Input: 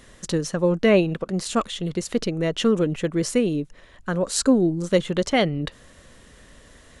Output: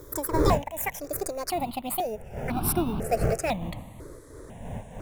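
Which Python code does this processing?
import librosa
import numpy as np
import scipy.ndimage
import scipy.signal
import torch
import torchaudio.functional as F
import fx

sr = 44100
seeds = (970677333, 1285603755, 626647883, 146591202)

p1 = fx.speed_glide(x, sr, from_pct=189, to_pct=90)
p2 = fx.dmg_wind(p1, sr, seeds[0], corner_hz=390.0, level_db=-25.0)
p3 = fx.high_shelf(p2, sr, hz=6700.0, db=11.0)
p4 = fx.sample_hold(p3, sr, seeds[1], rate_hz=3200.0, jitter_pct=0)
p5 = p3 + F.gain(torch.from_numpy(p4), -11.0).numpy()
p6 = fx.phaser_held(p5, sr, hz=2.0, low_hz=760.0, high_hz=1900.0)
y = F.gain(torch.from_numpy(p6), -6.0).numpy()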